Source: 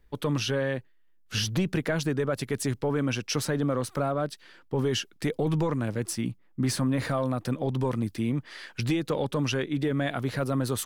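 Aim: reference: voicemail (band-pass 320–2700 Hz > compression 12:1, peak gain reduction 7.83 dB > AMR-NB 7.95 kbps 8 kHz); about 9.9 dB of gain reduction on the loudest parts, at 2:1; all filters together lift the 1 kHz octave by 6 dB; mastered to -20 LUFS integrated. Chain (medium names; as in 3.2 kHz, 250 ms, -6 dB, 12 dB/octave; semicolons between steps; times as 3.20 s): peaking EQ 1 kHz +8 dB; compression 2:1, threshold -40 dBFS; band-pass 320–2700 Hz; compression 12:1, threshold -38 dBFS; trim +25 dB; AMR-NB 7.95 kbps 8 kHz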